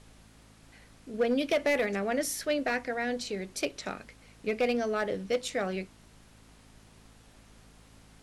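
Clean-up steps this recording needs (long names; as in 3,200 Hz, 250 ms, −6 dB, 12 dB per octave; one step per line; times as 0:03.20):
clipped peaks rebuilt −20.5 dBFS
click removal
hum removal 54 Hz, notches 5
broadband denoise 19 dB, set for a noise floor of −57 dBFS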